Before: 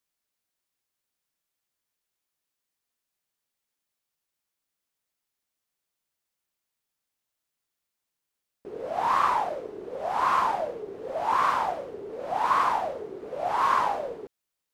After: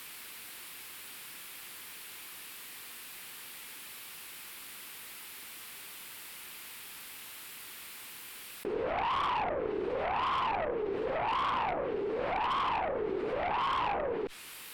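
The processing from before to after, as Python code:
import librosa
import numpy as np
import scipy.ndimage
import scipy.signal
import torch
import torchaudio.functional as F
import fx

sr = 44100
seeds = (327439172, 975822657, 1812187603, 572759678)

y = fx.env_lowpass_down(x, sr, base_hz=990.0, full_db=-25.5)
y = fx.low_shelf(y, sr, hz=190.0, db=-9.5)
y = fx.tube_stage(y, sr, drive_db=29.0, bias=0.3)
y = fx.graphic_eq_15(y, sr, hz=(630, 2500, 6300), db=(-8, 4, -9))
y = fx.env_flatten(y, sr, amount_pct=70)
y = F.gain(torch.from_numpy(y), 2.0).numpy()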